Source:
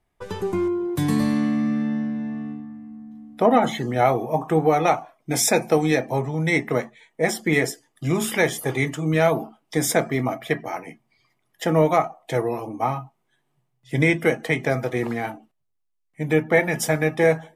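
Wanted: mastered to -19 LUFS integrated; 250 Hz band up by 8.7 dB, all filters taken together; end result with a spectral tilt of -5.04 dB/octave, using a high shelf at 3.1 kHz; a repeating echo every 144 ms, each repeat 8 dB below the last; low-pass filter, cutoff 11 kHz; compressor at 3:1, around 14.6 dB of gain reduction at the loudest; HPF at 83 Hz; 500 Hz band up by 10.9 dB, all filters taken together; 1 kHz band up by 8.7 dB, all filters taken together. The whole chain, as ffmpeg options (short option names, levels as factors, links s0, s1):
-af "highpass=83,lowpass=11000,equalizer=f=250:t=o:g=8,equalizer=f=500:t=o:g=9,equalizer=f=1000:t=o:g=7,highshelf=f=3100:g=3.5,acompressor=threshold=0.0708:ratio=3,aecho=1:1:144|288|432|576|720:0.398|0.159|0.0637|0.0255|0.0102,volume=1.78"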